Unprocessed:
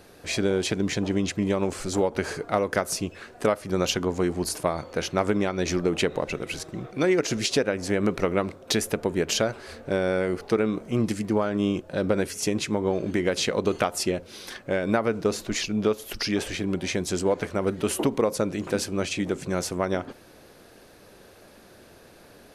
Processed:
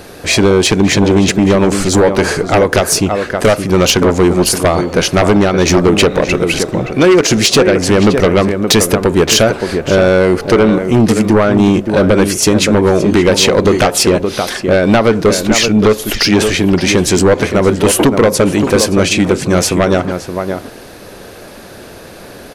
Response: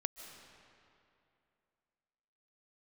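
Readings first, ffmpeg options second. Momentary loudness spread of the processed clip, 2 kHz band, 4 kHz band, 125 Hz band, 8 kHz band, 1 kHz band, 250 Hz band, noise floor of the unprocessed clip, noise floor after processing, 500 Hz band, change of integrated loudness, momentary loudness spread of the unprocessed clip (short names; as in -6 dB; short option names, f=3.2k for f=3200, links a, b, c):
4 LU, +15.5 dB, +16.5 dB, +16.5 dB, +16.5 dB, +15.0 dB, +15.5 dB, -51 dBFS, -33 dBFS, +15.0 dB, +15.5 dB, 5 LU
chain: -filter_complex "[0:a]asplit=2[a][b];[b]adelay=571.4,volume=-9dB,highshelf=f=4k:g=-12.9[c];[a][c]amix=inputs=2:normalize=0,acontrast=39,aeval=exprs='0.668*sin(PI/2*2.51*val(0)/0.668)':c=same"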